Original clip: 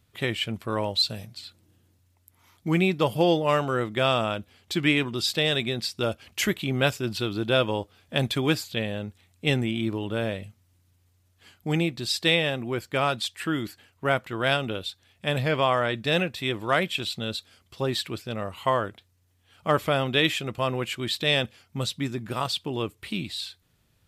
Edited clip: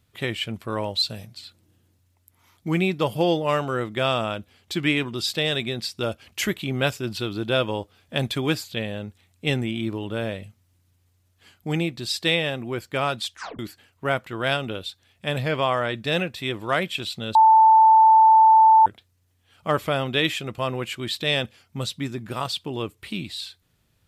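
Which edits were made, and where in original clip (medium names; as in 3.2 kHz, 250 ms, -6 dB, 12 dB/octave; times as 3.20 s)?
13.32 s: tape stop 0.27 s
17.35–18.86 s: bleep 884 Hz -10 dBFS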